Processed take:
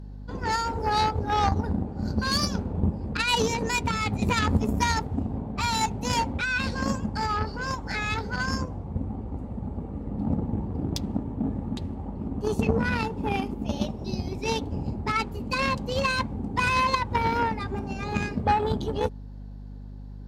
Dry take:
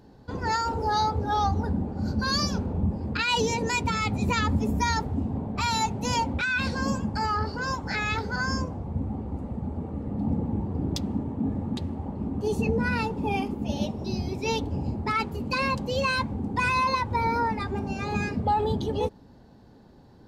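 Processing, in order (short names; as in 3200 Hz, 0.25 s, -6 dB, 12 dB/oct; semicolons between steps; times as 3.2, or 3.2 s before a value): added harmonics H 3 -14 dB, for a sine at -14 dBFS; hum 50 Hz, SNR 12 dB; gain +5 dB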